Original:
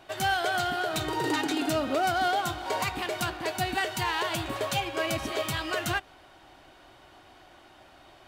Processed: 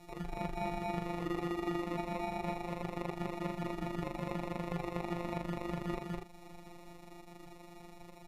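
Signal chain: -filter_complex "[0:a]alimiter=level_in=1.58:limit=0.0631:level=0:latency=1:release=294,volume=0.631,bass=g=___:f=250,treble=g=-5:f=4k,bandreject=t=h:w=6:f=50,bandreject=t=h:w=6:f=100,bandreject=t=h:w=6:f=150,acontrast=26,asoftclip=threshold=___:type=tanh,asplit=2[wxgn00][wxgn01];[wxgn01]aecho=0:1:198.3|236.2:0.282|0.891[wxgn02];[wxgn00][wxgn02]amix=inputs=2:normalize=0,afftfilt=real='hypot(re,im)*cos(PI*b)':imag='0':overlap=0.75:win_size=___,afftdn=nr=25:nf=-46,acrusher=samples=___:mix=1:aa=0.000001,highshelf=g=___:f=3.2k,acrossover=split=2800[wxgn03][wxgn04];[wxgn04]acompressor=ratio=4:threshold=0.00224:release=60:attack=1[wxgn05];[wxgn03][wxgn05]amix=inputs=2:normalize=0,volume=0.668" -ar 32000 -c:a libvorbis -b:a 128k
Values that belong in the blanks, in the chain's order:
12, 0.0562, 1024, 28, 3.5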